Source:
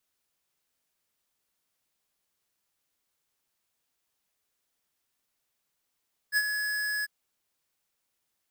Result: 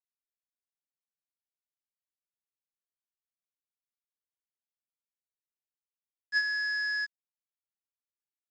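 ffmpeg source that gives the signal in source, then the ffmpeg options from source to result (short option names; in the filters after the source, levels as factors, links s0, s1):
-f lavfi -i "aevalsrc='0.0708*(2*lt(mod(1690*t,1),0.5)-1)':d=0.747:s=44100,afade=t=in:d=0.05,afade=t=out:st=0.05:d=0.048:silence=0.422,afade=t=out:st=0.72:d=0.027"
-af "highpass=180,aresample=16000,aeval=exprs='val(0)*gte(abs(val(0)),0.00266)':c=same,aresample=44100"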